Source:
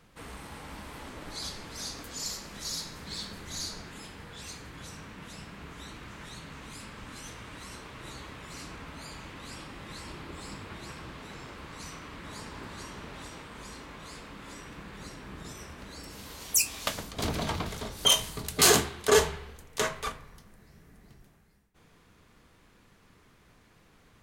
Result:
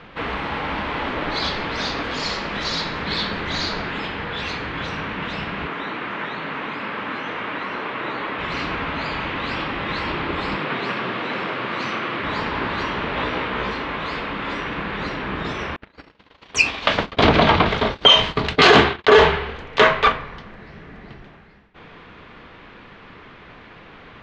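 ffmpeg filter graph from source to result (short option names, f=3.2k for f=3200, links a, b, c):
-filter_complex "[0:a]asettb=1/sr,asplit=3[a][b][c];[a]atrim=end=5.674[d];[b]atrim=start=5.67:end=8.39,asetpts=PTS-STARTPTS,afade=t=in:d=0.004:c=qsin,afade=t=out:st=2.716:d=0.004:c=qsin,acrossover=split=2700[e][f];[f]acompressor=threshold=-59dB:ratio=4:attack=1:release=60[g];[e][g]amix=inputs=2:normalize=0,highpass=200[h];[c]atrim=start=8.386[i];[d][h]acrossfade=d=0.004:c1=hsin:c2=qsin[j];[j][i]acrossfade=d=0.004:c1=qsin:c2=hsin,asettb=1/sr,asplit=3[k][l][m];[k]atrim=end=10.574[n];[l]atrim=start=10.57:end=12.23,asetpts=PTS-STARTPTS,afade=t=in:d=0.004:c=qsin,afade=t=out:st=1.656:d=0.004:c=qsin,highpass=f=89:p=1,afreqshift=56[o];[m]atrim=start=12.226[p];[n][o]acrossfade=d=0.004:c1=hsin:c2=qsin[q];[q][p]acrossfade=d=0.004:c1=qsin:c2=hsin,asettb=1/sr,asplit=3[r][s][t];[r]atrim=end=13.154[u];[s]atrim=start=13.15:end=13.71,asetpts=PTS-STARTPTS,afade=t=in:d=0.004:c=qsin,afade=t=out:st=0.556:d=0.004:c=qsin,acrossover=split=4500[v][w];[w]acompressor=threshold=-59dB:ratio=4:attack=1:release=60[x];[v][x]amix=inputs=2:normalize=0,equalizer=f=460:t=o:w=0.34:g=4,asplit=2[y][z];[z]adelay=16,volume=-3dB[aa];[y][aa]amix=inputs=2:normalize=0,atrim=end_sample=24696[ab];[t]atrim=start=13.706[ac];[u][ab]acrossfade=d=0.004:c1=hsin:c2=qsin[ad];[ad][ac]acrossfade=d=0.004:c1=qsin:c2=hsin,asettb=1/sr,asplit=3[ae][af][ag];[ae]atrim=end=15.764[ah];[af]atrim=start=15.76:end=19.22,asetpts=PTS-STARTPTS,afade=t=in:d=0.004:c=qsin,afade=t=out:st=3.456:d=0.004:c=qsin,lowpass=9.6k,agate=range=-39dB:threshold=-42dB:ratio=16:release=100:detection=peak[ai];[ag]atrim=start=19.216[aj];[ah][ai]acrossfade=d=0.004:c1=hsin:c2=qsin[ak];[ak][aj]acrossfade=d=0.004:c1=qsin:c2=hsin,lowpass=f=3.4k:w=0.5412,lowpass=f=3.4k:w=1.3066,lowshelf=f=220:g=-9.5,alimiter=level_in=21.5dB:limit=-1dB:release=50:level=0:latency=1,volume=-1dB"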